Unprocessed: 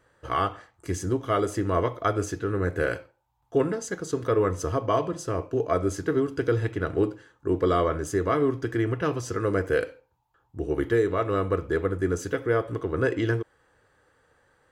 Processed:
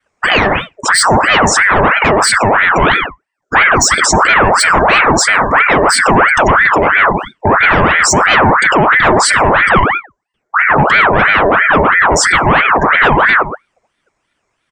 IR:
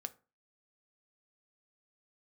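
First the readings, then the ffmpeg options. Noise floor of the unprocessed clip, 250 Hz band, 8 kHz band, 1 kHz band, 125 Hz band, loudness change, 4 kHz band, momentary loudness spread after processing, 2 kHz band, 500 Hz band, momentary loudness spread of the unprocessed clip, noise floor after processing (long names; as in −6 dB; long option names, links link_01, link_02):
−70 dBFS, +10.5 dB, +25.5 dB, +22.0 dB, +10.0 dB, +18.0 dB, +27.5 dB, 4 LU, +27.5 dB, +10.5 dB, 7 LU, −68 dBFS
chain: -filter_complex "[0:a]lowpass=frequency=6700:width_type=q:width=5.4,asplit=2[link_01][link_02];[1:a]atrim=start_sample=2205,asetrate=83790,aresample=44100[link_03];[link_02][link_03]afir=irnorm=-1:irlink=0,volume=3dB[link_04];[link_01][link_04]amix=inputs=2:normalize=0,adynamicequalizer=threshold=0.00794:dfrequency=3600:dqfactor=0.99:tfrequency=3600:tqfactor=0.99:attack=5:release=100:ratio=0.375:range=2:mode=cutabove:tftype=bell,asoftclip=type=tanh:threshold=-24dB,highpass=78,lowshelf=frequency=150:gain=9,bandreject=frequency=3300:width=5.5,asplit=2[link_05][link_06];[link_06]adelay=120,highpass=300,lowpass=3400,asoftclip=type=hard:threshold=-26dB,volume=-13dB[link_07];[link_05][link_07]amix=inputs=2:normalize=0,afftdn=noise_reduction=33:noise_floor=-39,alimiter=level_in=28dB:limit=-1dB:release=50:level=0:latency=1,aeval=exprs='val(0)*sin(2*PI*1200*n/s+1200*0.6/3*sin(2*PI*3*n/s))':channel_layout=same"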